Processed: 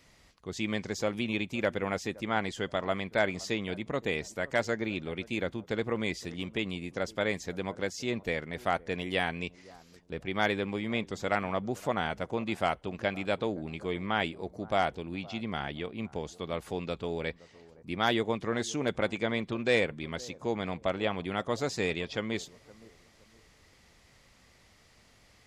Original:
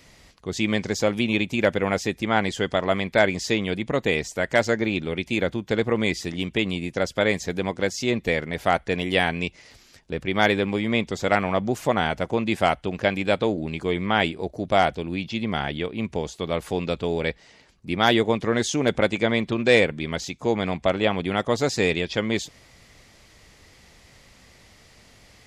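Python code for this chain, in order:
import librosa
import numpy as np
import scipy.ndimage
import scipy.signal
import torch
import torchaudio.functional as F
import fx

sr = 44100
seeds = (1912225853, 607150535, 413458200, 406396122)

y = fx.peak_eq(x, sr, hz=1200.0, db=2.5, octaves=0.77)
y = fx.echo_bbd(y, sr, ms=517, stages=4096, feedback_pct=31, wet_db=-21.0)
y = y * 10.0 ** (-9.0 / 20.0)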